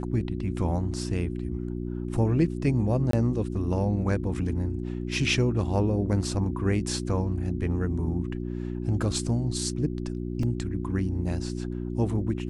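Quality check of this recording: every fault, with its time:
hum 60 Hz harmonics 6 -32 dBFS
3.11–3.13 s: dropout 23 ms
10.43 s: dropout 2.7 ms

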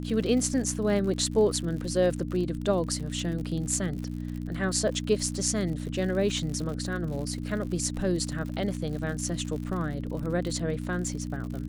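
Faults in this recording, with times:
crackle 82 per s -35 dBFS
hum 60 Hz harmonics 5 -34 dBFS

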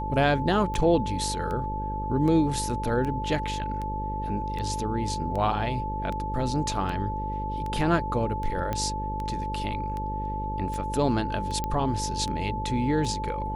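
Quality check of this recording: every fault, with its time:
buzz 50 Hz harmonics 11 -33 dBFS
tick 78 rpm -22 dBFS
whine 870 Hz -31 dBFS
8.73 s: pop -15 dBFS
11.64 s: pop -15 dBFS

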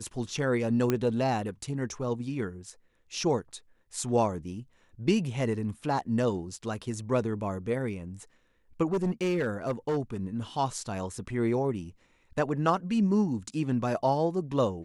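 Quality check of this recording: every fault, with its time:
0.90 s: pop -13 dBFS
8.92–9.98 s: clipped -23.5 dBFS

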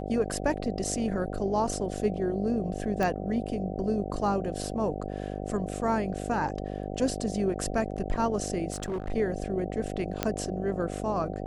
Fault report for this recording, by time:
buzz 50 Hz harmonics 15 -35 dBFS
3.03 s: pop -16 dBFS
8.72–9.13 s: clipped -28 dBFS
10.23 s: pop -10 dBFS

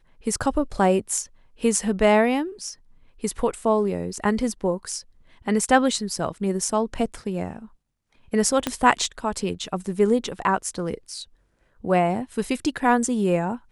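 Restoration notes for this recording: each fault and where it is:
8.67 s: pop -8 dBFS

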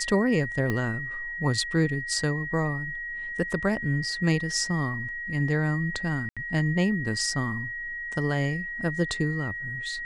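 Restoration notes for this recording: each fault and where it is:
whine 1.9 kHz -32 dBFS
0.70 s: pop -15 dBFS
6.29–6.37 s: dropout 76 ms

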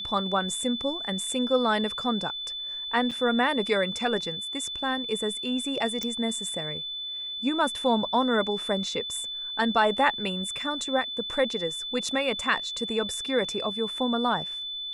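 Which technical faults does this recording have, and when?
whine 3.5 kHz -32 dBFS
3.11–3.12 s: dropout 5.8 ms
6.03 s: pop -15 dBFS

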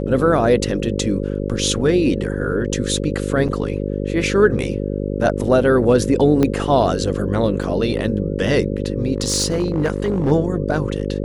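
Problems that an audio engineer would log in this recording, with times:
buzz 50 Hz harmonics 11 -23 dBFS
3.48–3.49 s: dropout 6.9 ms
6.43 s: pop -6 dBFS
7.63 s: dropout 4.3 ms
9.16–10.32 s: clipped -13.5 dBFS

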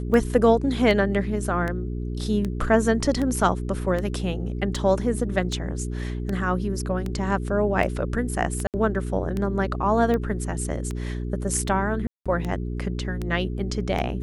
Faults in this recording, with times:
hum 60 Hz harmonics 7 -29 dBFS
tick 78 rpm -16 dBFS
8.67–8.74 s: dropout 68 ms
12.07–12.26 s: dropout 186 ms

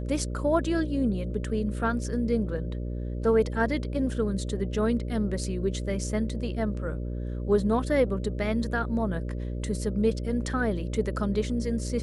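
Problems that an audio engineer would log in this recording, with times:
buzz 60 Hz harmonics 10 -32 dBFS

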